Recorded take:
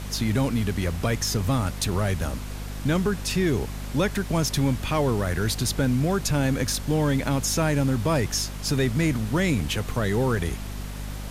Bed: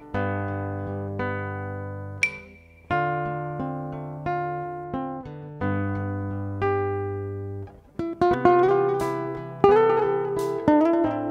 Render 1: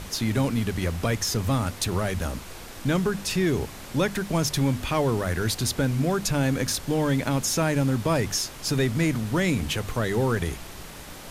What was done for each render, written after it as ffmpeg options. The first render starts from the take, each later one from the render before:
ffmpeg -i in.wav -af "bandreject=frequency=50:width_type=h:width=6,bandreject=frequency=100:width_type=h:width=6,bandreject=frequency=150:width_type=h:width=6,bandreject=frequency=200:width_type=h:width=6,bandreject=frequency=250:width_type=h:width=6" out.wav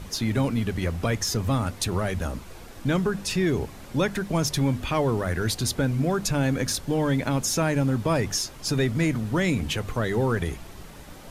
ffmpeg -i in.wav -af "afftdn=noise_reduction=7:noise_floor=-41" out.wav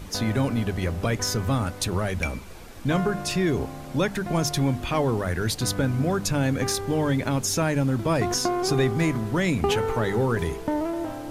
ffmpeg -i in.wav -i bed.wav -filter_complex "[1:a]volume=-8dB[link_01];[0:a][link_01]amix=inputs=2:normalize=0" out.wav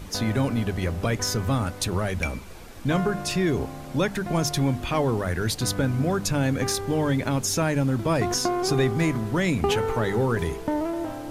ffmpeg -i in.wav -af anull out.wav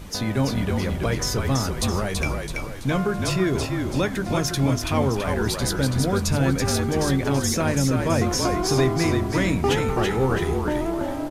ffmpeg -i in.wav -filter_complex "[0:a]asplit=2[link_01][link_02];[link_02]adelay=15,volume=-11.5dB[link_03];[link_01][link_03]amix=inputs=2:normalize=0,asplit=7[link_04][link_05][link_06][link_07][link_08][link_09][link_10];[link_05]adelay=331,afreqshift=-40,volume=-4dB[link_11];[link_06]adelay=662,afreqshift=-80,volume=-11.1dB[link_12];[link_07]adelay=993,afreqshift=-120,volume=-18.3dB[link_13];[link_08]adelay=1324,afreqshift=-160,volume=-25.4dB[link_14];[link_09]adelay=1655,afreqshift=-200,volume=-32.5dB[link_15];[link_10]adelay=1986,afreqshift=-240,volume=-39.7dB[link_16];[link_04][link_11][link_12][link_13][link_14][link_15][link_16]amix=inputs=7:normalize=0" out.wav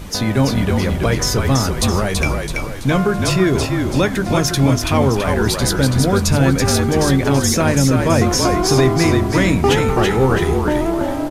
ffmpeg -i in.wav -af "volume=7dB,alimiter=limit=-3dB:level=0:latency=1" out.wav

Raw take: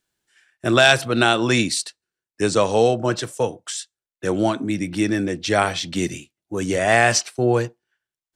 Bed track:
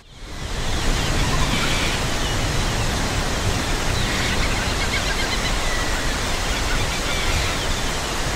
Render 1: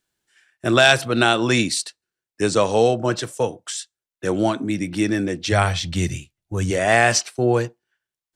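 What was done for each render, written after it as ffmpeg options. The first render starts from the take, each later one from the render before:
ffmpeg -i in.wav -filter_complex "[0:a]asplit=3[link_01][link_02][link_03];[link_01]afade=type=out:start_time=5.51:duration=0.02[link_04];[link_02]asubboost=boost=9.5:cutoff=91,afade=type=in:start_time=5.51:duration=0.02,afade=type=out:start_time=6.7:duration=0.02[link_05];[link_03]afade=type=in:start_time=6.7:duration=0.02[link_06];[link_04][link_05][link_06]amix=inputs=3:normalize=0" out.wav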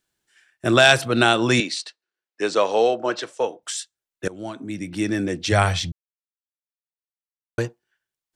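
ffmpeg -i in.wav -filter_complex "[0:a]asettb=1/sr,asplit=3[link_01][link_02][link_03];[link_01]atrim=end=1.604[link_04];[link_02]atrim=start=1.6:end=3.63,asetpts=PTS-STARTPTS,afade=type=in:duration=0.004:curve=qsin,afade=type=out:start_time=2.026:duration=0.004:curve=qsin,highpass=380,lowpass=4700[link_05];[link_03]atrim=start=3.626[link_06];[link_04][link_05]acrossfade=duration=0.004:curve1=hsin:curve2=qsin[link_07];[link_07][link_06]acrossfade=duration=0.004:curve1=qsin:curve2=hsin,asplit=4[link_08][link_09][link_10][link_11];[link_08]atrim=end=4.28,asetpts=PTS-STARTPTS,afade=type=out:start_time=4.276:duration=0.004:curve=hsin:silence=0.0841395[link_12];[link_09]atrim=start=4.28:end=5.92,asetpts=PTS-STARTPTS,afade=type=in:duration=1.13:silence=0.0841395,afade=type=out:start_time=1.636:duration=0.004:curve=hsin[link_13];[link_10]atrim=start=5.92:end=7.58,asetpts=PTS-STARTPTS,volume=0[link_14];[link_11]atrim=start=7.58,asetpts=PTS-STARTPTS,afade=type=in:duration=0.004:curve=hsin[link_15];[link_12][link_13][link_14][link_15]concat=n=4:v=0:a=1" out.wav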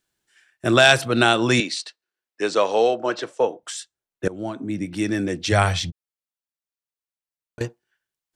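ffmpeg -i in.wav -filter_complex "[0:a]asettb=1/sr,asplit=3[link_01][link_02][link_03];[link_01]atrim=end=3.184[link_04];[link_02]atrim=start=3.18:end=4.86,asetpts=PTS-STARTPTS,afade=type=in:duration=0.004:curve=qsin,afade=type=out:start_time=1.676:duration=0.004:curve=qsin,tiltshelf=frequency=1500:gain=4[link_05];[link_03]atrim=start=4.856[link_06];[link_04][link_05]acrossfade=duration=0.004:curve1=hsin:curve2=qsin[link_07];[link_07][link_06]acrossfade=duration=0.004:curve1=qsin:curve2=hsin,asettb=1/sr,asplit=3[link_08][link_09][link_10];[link_08]atrim=end=5.904[link_11];[link_09]atrim=start=5.9:end=7.61,asetpts=PTS-STARTPTS,afade=type=in:duration=0.004:curve=qsin,afade=type=out:start_time=1.706:duration=0.004:curve=qsin,acompressor=threshold=-39dB:ratio=6:attack=3.2:release=140:knee=1:detection=peak[link_12];[link_10]atrim=start=7.606[link_13];[link_11][link_12]acrossfade=duration=0.004:curve1=hsin:curve2=qsin[link_14];[link_14][link_13]acrossfade=duration=0.004:curve1=qsin:curve2=hsin" out.wav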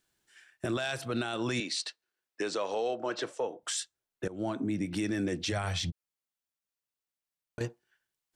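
ffmpeg -i in.wav -af "acompressor=threshold=-27dB:ratio=6,alimiter=limit=-23dB:level=0:latency=1:release=12" out.wav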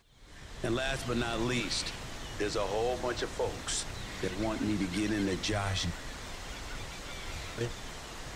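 ffmpeg -i in.wav -i bed.wav -filter_complex "[1:a]volume=-19.5dB[link_01];[0:a][link_01]amix=inputs=2:normalize=0" out.wav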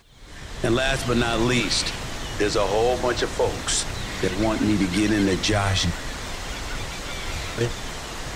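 ffmpeg -i in.wav -af "volume=10.5dB" out.wav

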